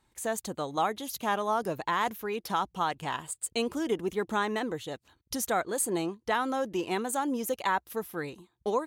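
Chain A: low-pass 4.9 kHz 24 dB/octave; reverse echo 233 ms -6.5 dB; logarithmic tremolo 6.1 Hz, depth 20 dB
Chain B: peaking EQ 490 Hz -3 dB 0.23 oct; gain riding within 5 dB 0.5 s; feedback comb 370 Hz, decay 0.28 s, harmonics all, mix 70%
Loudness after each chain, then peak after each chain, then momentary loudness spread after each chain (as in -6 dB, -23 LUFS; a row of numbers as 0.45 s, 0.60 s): -36.0 LUFS, -40.5 LUFS; -15.0 dBFS, -23.5 dBFS; 7 LU, 4 LU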